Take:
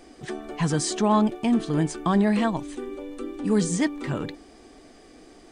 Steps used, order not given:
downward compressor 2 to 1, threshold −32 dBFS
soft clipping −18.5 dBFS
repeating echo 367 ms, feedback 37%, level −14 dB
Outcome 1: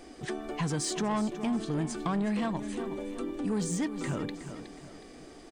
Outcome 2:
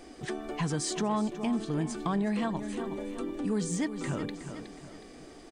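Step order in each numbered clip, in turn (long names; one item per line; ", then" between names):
soft clipping, then repeating echo, then downward compressor
repeating echo, then downward compressor, then soft clipping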